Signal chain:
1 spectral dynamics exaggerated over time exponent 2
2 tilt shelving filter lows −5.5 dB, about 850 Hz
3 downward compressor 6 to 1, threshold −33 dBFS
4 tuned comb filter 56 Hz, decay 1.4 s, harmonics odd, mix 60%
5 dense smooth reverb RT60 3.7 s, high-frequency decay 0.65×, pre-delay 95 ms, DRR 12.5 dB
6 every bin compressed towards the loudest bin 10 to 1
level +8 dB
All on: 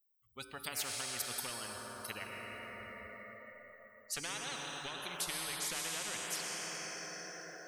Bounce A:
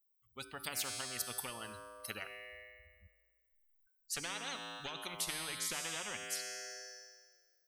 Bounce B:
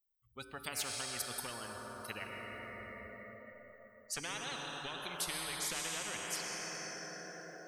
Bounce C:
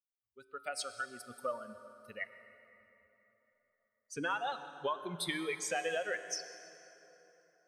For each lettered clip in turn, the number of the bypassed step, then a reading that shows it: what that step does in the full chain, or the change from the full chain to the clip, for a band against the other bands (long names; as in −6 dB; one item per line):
5, change in crest factor +1.5 dB
2, 8 kHz band −2.0 dB
6, change in momentary loudness spread +2 LU